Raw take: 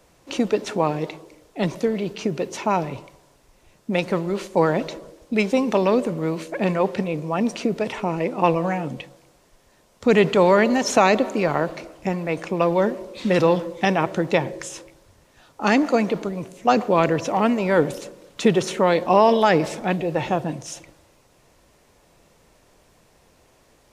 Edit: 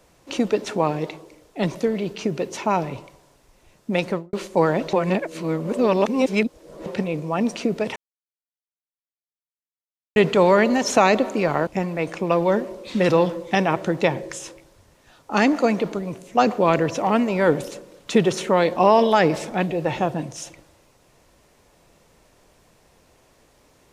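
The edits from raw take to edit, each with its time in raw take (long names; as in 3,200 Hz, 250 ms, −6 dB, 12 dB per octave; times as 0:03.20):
0:04.06–0:04.33: fade out and dull
0:04.93–0:06.86: reverse
0:07.96–0:10.16: silence
0:11.67–0:11.97: remove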